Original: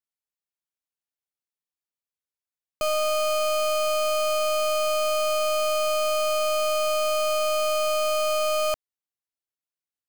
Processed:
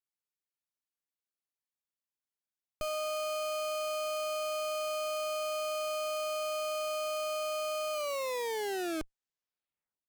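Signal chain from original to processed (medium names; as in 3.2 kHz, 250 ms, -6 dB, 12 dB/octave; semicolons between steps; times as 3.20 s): tape stop on the ending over 2.16 s; one-sided clip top -39.5 dBFS, bottom -22.5 dBFS; trim -5.5 dB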